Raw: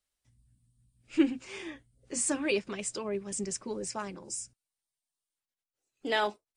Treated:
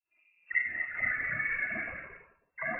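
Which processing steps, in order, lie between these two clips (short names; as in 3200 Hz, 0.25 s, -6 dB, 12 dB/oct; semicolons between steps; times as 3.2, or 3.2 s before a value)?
spectral delay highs late, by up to 0.373 s; low shelf 350 Hz -5 dB; compressor 2.5:1, threshold -34 dBFS, peak gain reduction 9 dB; wide varispeed 2.35×; thinning echo 60 ms, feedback 76%, high-pass 1100 Hz, level -13 dB; reverb RT60 0.55 s, pre-delay 27 ms, DRR -10.5 dB; envelope flanger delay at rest 3 ms, full sweep at -27.5 dBFS; echoes that change speed 0.268 s, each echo +1 st, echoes 2, each echo -6 dB; inverted band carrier 2700 Hz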